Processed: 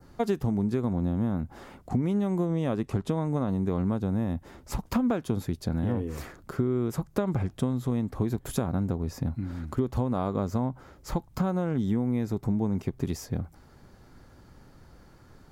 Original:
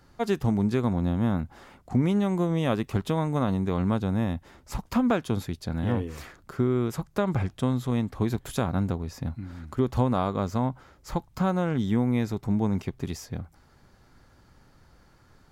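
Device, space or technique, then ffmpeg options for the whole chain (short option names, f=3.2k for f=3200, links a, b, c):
ASMR close-microphone chain: -filter_complex "[0:a]adynamicequalizer=threshold=0.00224:dfrequency=3200:dqfactor=1.1:tfrequency=3200:tqfactor=1.1:attack=5:release=100:ratio=0.375:range=2:mode=cutabove:tftype=bell,asettb=1/sr,asplit=3[a][b][c];[a]atrim=end=2.454[d];[b]atrim=start=2.45:end=3.49,asetpts=PTS-STARTPTS,afade=t=in:d=0.004:c=qsin,afade=t=out:st=1.036:d=0.004:c=qsin,lowpass=10k[e];[c]atrim=start=3.486[f];[d][e]acrossfade=d=0.004:c1=hsin:c2=qsin[g];[g][f]acrossfade=d=0.004:c1=qsin:c2=hsin,lowshelf=f=190:g=4,acompressor=threshold=-27dB:ratio=5,equalizer=f=360:w=0.51:g=5,highshelf=f=9.1k:g=4.5"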